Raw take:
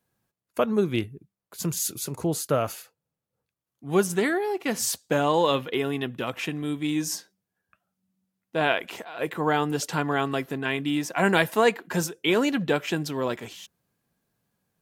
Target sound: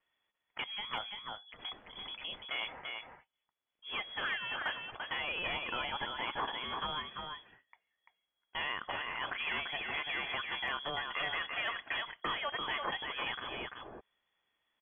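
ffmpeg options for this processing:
-filter_complex "[0:a]equalizer=f=370:t=o:w=2:g=-12.5,acrossover=split=2000[s0][s1];[s1]alimiter=level_in=1.06:limit=0.0631:level=0:latency=1:release=23,volume=0.944[s2];[s0][s2]amix=inputs=2:normalize=0,acrossover=split=140|800[s3][s4][s5];[s3]acompressor=threshold=0.00398:ratio=4[s6];[s4]acompressor=threshold=0.00708:ratio=4[s7];[s5]acompressor=threshold=0.0158:ratio=4[s8];[s6][s7][s8]amix=inputs=3:normalize=0,asoftclip=type=hard:threshold=0.0237,crystalizer=i=6:c=0,lowpass=f=3000:t=q:w=0.5098,lowpass=f=3000:t=q:w=0.6013,lowpass=f=3000:t=q:w=0.9,lowpass=f=3000:t=q:w=2.563,afreqshift=-3500,aecho=1:1:341:0.596,aeval=exprs='0.0841*(cos(1*acos(clip(val(0)/0.0841,-1,1)))-cos(1*PI/2))+0.000841*(cos(3*acos(clip(val(0)/0.0841,-1,1)))-cos(3*PI/2))':c=same,volume=0.75"

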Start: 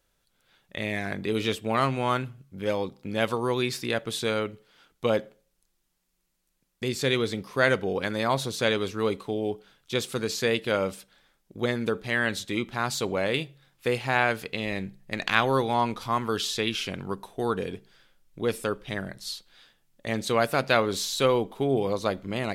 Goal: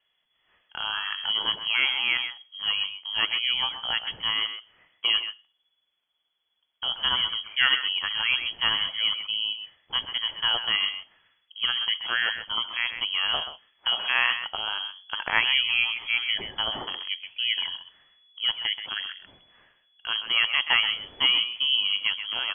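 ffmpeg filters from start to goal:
-filter_complex "[0:a]asplit=2[s0][s1];[s1]adelay=130,highpass=300,lowpass=3400,asoftclip=type=hard:threshold=0.266,volume=0.355[s2];[s0][s2]amix=inputs=2:normalize=0,lowpass=f=2900:t=q:w=0.5098,lowpass=f=2900:t=q:w=0.6013,lowpass=f=2900:t=q:w=0.9,lowpass=f=2900:t=q:w=2.563,afreqshift=-3400"

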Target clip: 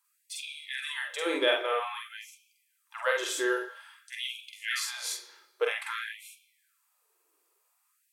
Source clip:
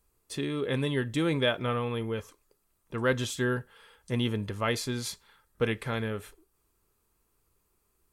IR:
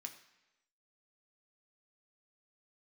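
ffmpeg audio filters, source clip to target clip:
-filter_complex "[0:a]asplit=2[s0][s1];[1:a]atrim=start_sample=2205,adelay=46[s2];[s1][s2]afir=irnorm=-1:irlink=0,volume=1.58[s3];[s0][s3]amix=inputs=2:normalize=0,afftfilt=real='re*gte(b*sr/1024,280*pow(2200/280,0.5+0.5*sin(2*PI*0.51*pts/sr)))':imag='im*gte(b*sr/1024,280*pow(2200/280,0.5+0.5*sin(2*PI*0.51*pts/sr)))':win_size=1024:overlap=0.75"

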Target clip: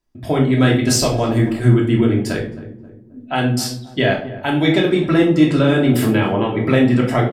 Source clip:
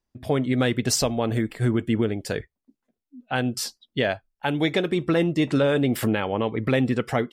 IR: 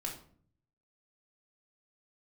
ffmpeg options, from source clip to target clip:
-filter_complex "[0:a]asplit=2[s0][s1];[s1]adelay=267,lowpass=f=970:p=1,volume=0.2,asplit=2[s2][s3];[s3]adelay=267,lowpass=f=970:p=1,volume=0.49,asplit=2[s4][s5];[s5]adelay=267,lowpass=f=970:p=1,volume=0.49,asplit=2[s6][s7];[s7]adelay=267,lowpass=f=970:p=1,volume=0.49,asplit=2[s8][s9];[s9]adelay=267,lowpass=f=970:p=1,volume=0.49[s10];[s0][s2][s4][s6][s8][s10]amix=inputs=6:normalize=0[s11];[1:a]atrim=start_sample=2205[s12];[s11][s12]afir=irnorm=-1:irlink=0,volume=2"

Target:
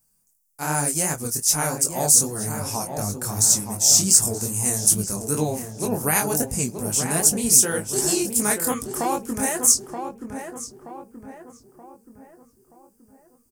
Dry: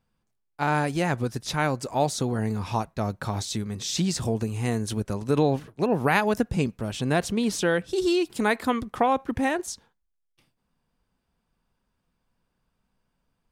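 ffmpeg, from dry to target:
-filter_complex "[0:a]asplit=2[s0][s1];[s1]adelay=20,volume=0.2[s2];[s0][s2]amix=inputs=2:normalize=0,aexciter=amount=9.2:drive=9.7:freq=5700,flanger=delay=18.5:depth=7.6:speed=2.6,asplit=2[s3][s4];[s4]adelay=927,lowpass=f=1700:p=1,volume=0.473,asplit=2[s5][s6];[s6]adelay=927,lowpass=f=1700:p=1,volume=0.47,asplit=2[s7][s8];[s8]adelay=927,lowpass=f=1700:p=1,volume=0.47,asplit=2[s9][s10];[s10]adelay=927,lowpass=f=1700:p=1,volume=0.47,asplit=2[s11][s12];[s12]adelay=927,lowpass=f=1700:p=1,volume=0.47,asplit=2[s13][s14];[s14]adelay=927,lowpass=f=1700:p=1,volume=0.47[s15];[s5][s7][s9][s11][s13][s15]amix=inputs=6:normalize=0[s16];[s3][s16]amix=inputs=2:normalize=0"

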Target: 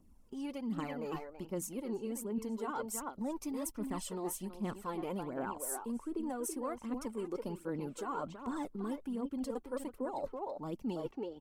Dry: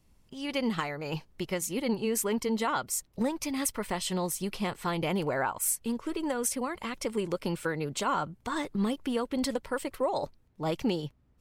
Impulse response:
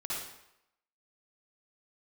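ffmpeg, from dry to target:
-filter_complex "[0:a]asplit=2[s0][s1];[s1]adelay=330,highpass=300,lowpass=3400,asoftclip=type=hard:threshold=0.0794,volume=0.447[s2];[s0][s2]amix=inputs=2:normalize=0,aphaser=in_gain=1:out_gain=1:delay=2.8:decay=0.58:speed=1.3:type=triangular,equalizer=f=125:t=o:w=1:g=-7,equalizer=f=250:t=o:w=1:g=11,equalizer=f=1000:t=o:w=1:g=3,equalizer=f=2000:t=o:w=1:g=-7,equalizer=f=4000:t=o:w=1:g=-8,areverse,acompressor=threshold=0.0316:ratio=6,areverse,volume=0.531"

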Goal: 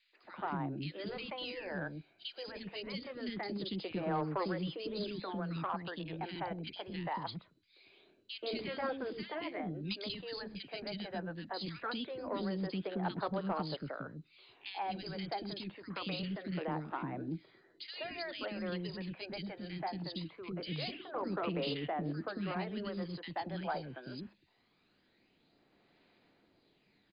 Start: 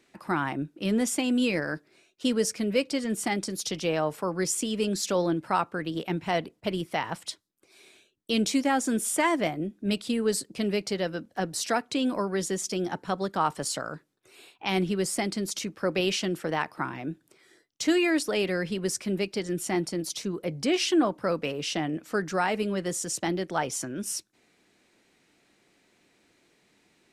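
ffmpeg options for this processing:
-filter_complex "[0:a]asettb=1/sr,asplit=3[s0][s1][s2];[s0]atrim=end=9.804[s3];[s1]atrim=start=9.8:end=10.22,asetpts=PTS-STARTPTS,afade=t=in:d=0.004:c=qsin,afade=t=out:st=0.416:d=0.004:c=qsin,highshelf=f=2300:g=11.5[s4];[s2]atrim=start=10.216[s5];[s3][s4]acrossfade=d=0.004:c1=hsin:c2=qsin[s6];[s6][s5]acrossfade=d=0.004:c1=qsin:c2=hsin,afftfilt=real='re*lt(hypot(re,im),0.355)':imag='im*lt(hypot(re,im),0.355)':win_size=1024:overlap=0.75,acrossover=split=110|1000|4800[s7][s8][s9][s10];[s7]acompressor=threshold=0.00141:ratio=4[s11];[s9]acompressor=threshold=0.0158:ratio=4[s12];[s11][s8][s12][s10]amix=inputs=4:normalize=0,acrossover=split=370|2100[s13][s14][s15];[s14]adelay=130[s16];[s13]adelay=230[s17];[s17][s16][s15]amix=inputs=3:normalize=0,aphaser=in_gain=1:out_gain=1:delay=1.3:decay=0.4:speed=0.23:type=sinusoidal,acrossover=split=150|850|5800[s18][s19][s20][s21];[s19]crystalizer=i=8.5:c=0[s22];[s18][s22][s20][s21]amix=inputs=4:normalize=0,asoftclip=type=tanh:threshold=0.112,volume=0.501" -ar 16000 -c:a mp2 -b:a 64k

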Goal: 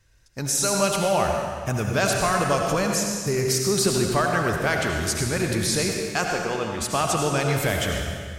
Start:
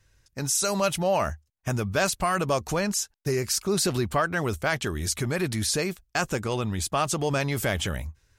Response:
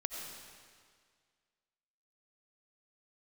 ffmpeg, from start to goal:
-filter_complex "[0:a]asettb=1/sr,asplit=3[s0][s1][s2];[s0]atrim=end=6.254[s3];[s1]atrim=start=6.25:end=6.81,asetpts=PTS-STARTPTS,afade=t=in:d=0.004:c=qsin,afade=t=out:st=0.556:d=0.004:c=qsin,bass=f=250:g=-9,treble=f=4000:g=-9[s4];[s2]atrim=start=6.806[s5];[s3][s4]acrossfade=d=0.004:c1=hsin:c2=qsin[s6];[s6][s5]acrossfade=d=0.004:c1=qsin:c2=hsin[s7];[1:a]atrim=start_sample=2205,asetrate=48510,aresample=44100[s8];[s7][s8]afir=irnorm=-1:irlink=0,volume=1.5"

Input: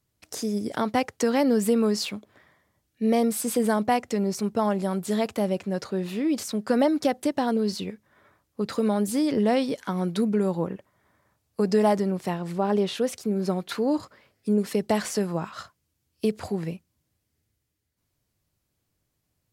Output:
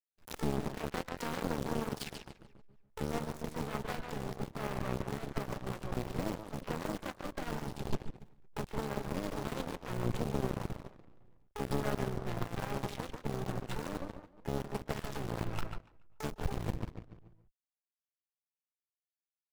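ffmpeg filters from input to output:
-filter_complex "[0:a]adynamicsmooth=sensitivity=6.5:basefreq=950,alimiter=limit=0.0944:level=0:latency=1:release=20,acrusher=bits=7:dc=4:mix=0:aa=0.000001,asplit=2[s0][s1];[s1]adelay=143,lowpass=f=3400:p=1,volume=0.562,asplit=2[s2][s3];[s3]adelay=143,lowpass=f=3400:p=1,volume=0.39,asplit=2[s4][s5];[s5]adelay=143,lowpass=f=3400:p=1,volume=0.39,asplit=2[s6][s7];[s7]adelay=143,lowpass=f=3400:p=1,volume=0.39,asplit=2[s8][s9];[s9]adelay=143,lowpass=f=3400:p=1,volume=0.39[s10];[s0][s2][s4][s6][s8][s10]amix=inputs=6:normalize=0,asplit=3[s11][s12][s13];[s12]asetrate=29433,aresample=44100,atempo=1.49831,volume=0.794[s14];[s13]asetrate=88200,aresample=44100,atempo=0.5,volume=0.501[s15];[s11][s14][s15]amix=inputs=3:normalize=0,lowshelf=f=110:g=8.5,acompressor=threshold=0.00891:ratio=2,asubboost=boost=6:cutoff=69,aeval=exprs='0.0841*(cos(1*acos(clip(val(0)/0.0841,-1,1)))-cos(1*PI/2))+0.0168*(cos(4*acos(clip(val(0)/0.0841,-1,1)))-cos(4*PI/2))+0.00119*(cos(6*acos(clip(val(0)/0.0841,-1,1)))-cos(6*PI/2))+0.00531*(cos(7*acos(clip(val(0)/0.0841,-1,1)))-cos(7*PI/2))+0.00668*(cos(8*acos(clip(val(0)/0.0841,-1,1)))-cos(8*PI/2))':c=same,volume=1.12"

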